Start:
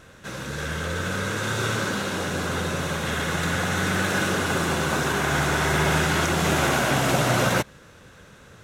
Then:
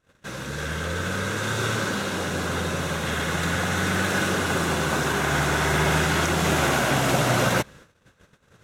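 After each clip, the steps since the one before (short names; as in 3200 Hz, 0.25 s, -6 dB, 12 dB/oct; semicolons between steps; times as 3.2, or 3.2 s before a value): gate -46 dBFS, range -24 dB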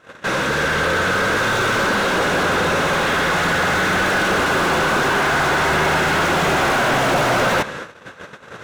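overdrive pedal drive 33 dB, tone 1500 Hz, clips at -8.5 dBFS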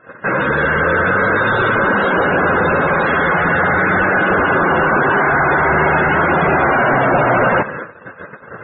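loudest bins only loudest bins 64; gain +4.5 dB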